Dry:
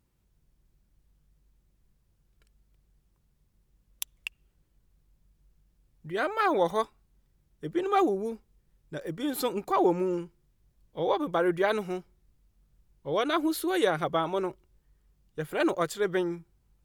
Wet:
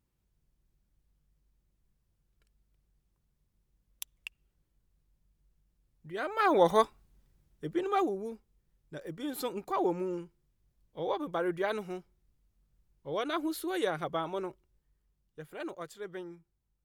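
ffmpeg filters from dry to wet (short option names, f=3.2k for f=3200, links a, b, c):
-af "volume=3.5dB,afade=t=in:st=6.24:d=0.51:silence=0.316228,afade=t=out:st=6.75:d=1.34:silence=0.334965,afade=t=out:st=14.33:d=1.33:silence=0.398107"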